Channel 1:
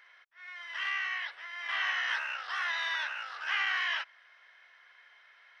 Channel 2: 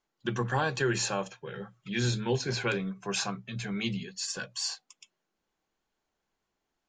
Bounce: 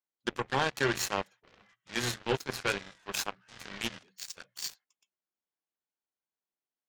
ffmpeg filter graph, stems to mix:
-filter_complex "[0:a]volume=0.422[s0];[1:a]volume=1.19,asplit=2[s1][s2];[s2]apad=whole_len=246962[s3];[s0][s3]sidechaingate=range=0.0224:threshold=0.00501:ratio=16:detection=peak[s4];[s4][s1]amix=inputs=2:normalize=0,highpass=f=210:p=1,aeval=exprs='0.188*(cos(1*acos(clip(val(0)/0.188,-1,1)))-cos(1*PI/2))+0.0299*(cos(7*acos(clip(val(0)/0.188,-1,1)))-cos(7*PI/2))':c=same"

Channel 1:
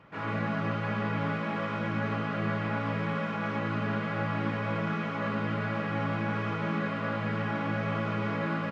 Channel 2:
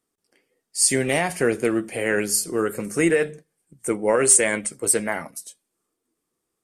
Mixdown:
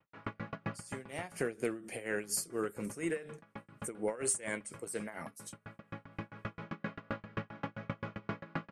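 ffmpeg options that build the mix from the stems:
-filter_complex "[0:a]aeval=exprs='val(0)*pow(10,-36*if(lt(mod(7.6*n/s,1),2*abs(7.6)/1000),1-mod(7.6*n/s,1)/(2*abs(7.6)/1000),(mod(7.6*n/s,1)-2*abs(7.6)/1000)/(1-2*abs(7.6)/1000))/20)':c=same,volume=1.19,asplit=3[s0][s1][s2];[s0]atrim=end=1.55,asetpts=PTS-STARTPTS,afade=t=out:st=1.546:d=0.004:c=hsin[s3];[s1]atrim=start=1.55:end=2.15,asetpts=PTS-STARTPTS,volume=0[s4];[s2]atrim=start=2.15,asetpts=PTS-STARTPTS,afade=t=in:d=0.004:c=hsin[s5];[s3][s4][s5]concat=n=3:v=0:a=1[s6];[1:a]acompressor=threshold=0.0794:ratio=6,volume=0.447,afade=t=in:st=1.06:d=0.43:silence=0.334965,asplit=2[s7][s8];[s8]apad=whole_len=384165[s9];[s6][s9]sidechaincompress=threshold=0.00891:ratio=8:attack=8.8:release=1370[s10];[s10][s7]amix=inputs=2:normalize=0,agate=range=0.0224:threshold=0.00282:ratio=3:detection=peak,tremolo=f=4.2:d=0.81"

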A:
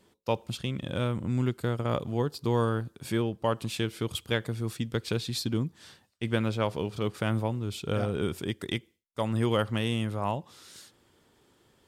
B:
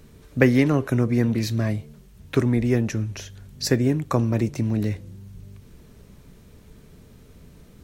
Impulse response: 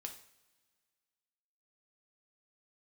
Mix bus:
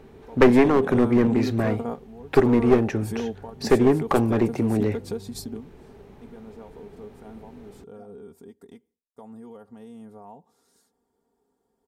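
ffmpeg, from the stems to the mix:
-filter_complex "[0:a]equalizer=f=2900:t=o:w=1.4:g=-15,aecho=1:1:4.3:0.73,alimiter=level_in=1.19:limit=0.0631:level=0:latency=1:release=160,volume=0.841,volume=0.596[s0];[1:a]bass=f=250:g=-6,treble=f=4000:g=-14,volume=0.708,asplit=2[s1][s2];[s2]apad=whole_len=523866[s3];[s0][s3]sidechaingate=range=0.178:threshold=0.00355:ratio=16:detection=peak[s4];[s4][s1]amix=inputs=2:normalize=0,equalizer=f=250:t=o:w=0.33:g=4,equalizer=f=400:t=o:w=0.33:g=9,equalizer=f=800:t=o:w=0.33:g=12,acontrast=39,aeval=exprs='clip(val(0),-1,0.158)':c=same"

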